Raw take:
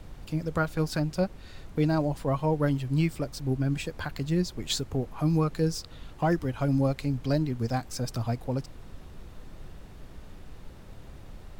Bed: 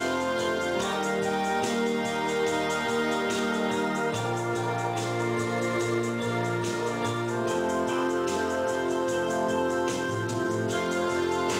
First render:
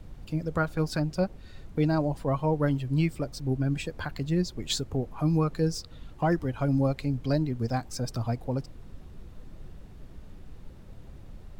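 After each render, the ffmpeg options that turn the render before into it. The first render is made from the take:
-af "afftdn=nr=6:nf=-47"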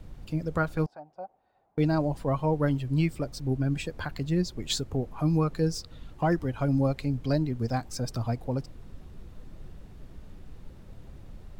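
-filter_complex "[0:a]asettb=1/sr,asplit=3[s0][s1][s2];[s0]atrim=end=0.864[s3];[s1]atrim=start=0.86:end=1.78,asetpts=PTS-STARTPTS,afade=t=in:d=0.004:c=qsin,afade=t=out:st=0.916:d=0.004:c=qsin,bandpass=f=770:t=q:w=6.3[s4];[s2]atrim=start=1.776[s5];[s3][s4]acrossfade=d=0.004:c1=hsin:c2=qsin[s6];[s6][s5]acrossfade=d=0.004:c1=qsin:c2=hsin"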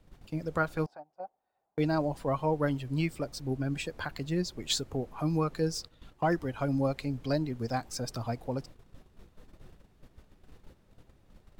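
-af "agate=range=0.316:threshold=0.00891:ratio=16:detection=peak,lowshelf=f=230:g=-8.5"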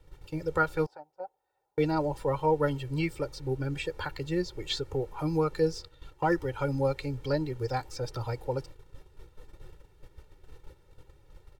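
-filter_complex "[0:a]acrossover=split=4100[s0][s1];[s1]acompressor=threshold=0.00316:ratio=4:attack=1:release=60[s2];[s0][s2]amix=inputs=2:normalize=0,aecho=1:1:2.2:0.89"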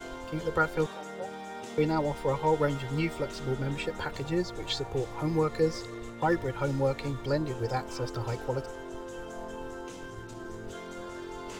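-filter_complex "[1:a]volume=0.2[s0];[0:a][s0]amix=inputs=2:normalize=0"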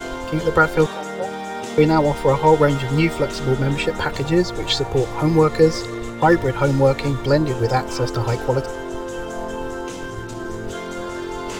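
-af "volume=3.98,alimiter=limit=0.794:level=0:latency=1"

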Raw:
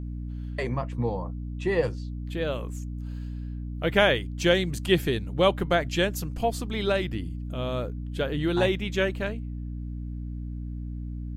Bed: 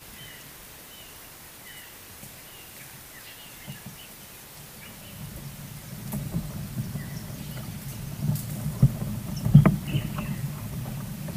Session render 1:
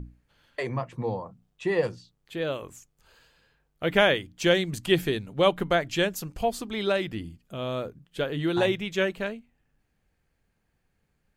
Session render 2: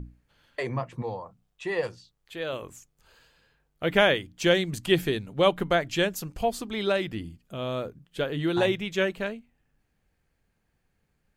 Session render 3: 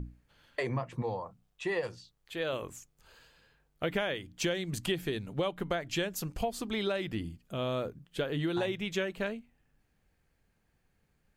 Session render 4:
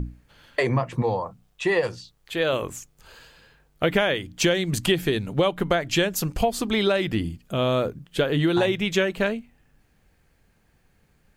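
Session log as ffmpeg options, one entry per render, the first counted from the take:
-af "bandreject=f=60:t=h:w=6,bandreject=f=120:t=h:w=6,bandreject=f=180:t=h:w=6,bandreject=f=240:t=h:w=6,bandreject=f=300:t=h:w=6"
-filter_complex "[0:a]asettb=1/sr,asplit=3[s0][s1][s2];[s0]atrim=end=1.024[s3];[s1]atrim=start=1.02:end=2.53,asetpts=PTS-STARTPTS,afade=t=in:d=0.004:c=qsin,afade=t=out:st=1.506:d=0.004:c=qsin,equalizer=f=200:t=o:w=2.2:g=-8.5[s4];[s2]atrim=start=2.526[s5];[s3][s4]acrossfade=d=0.004:c1=hsin:c2=qsin[s6];[s6][s5]acrossfade=d=0.004:c1=qsin:c2=hsin"
-af "acompressor=threshold=0.0398:ratio=12"
-af "volume=3.35"

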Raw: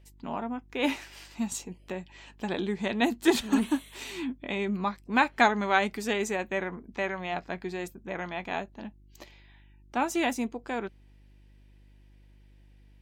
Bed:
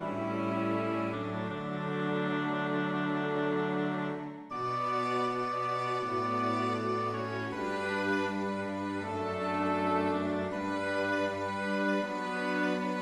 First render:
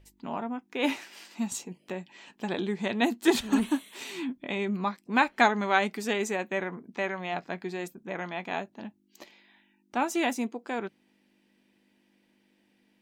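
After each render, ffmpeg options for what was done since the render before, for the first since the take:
-af "bandreject=f=50:t=h:w=4,bandreject=f=100:t=h:w=4,bandreject=f=150:t=h:w=4"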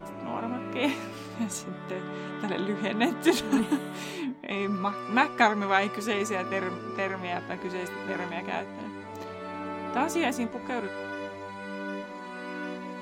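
-filter_complex "[1:a]volume=0.531[s0];[0:a][s0]amix=inputs=2:normalize=0"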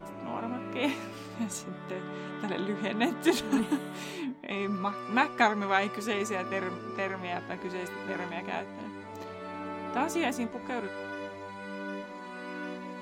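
-af "volume=0.75"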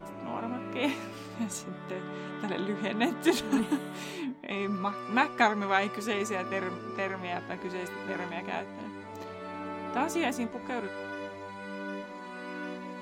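-af anull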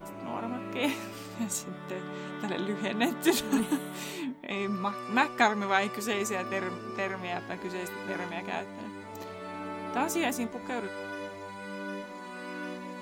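-af "highshelf=f=8100:g=11.5"

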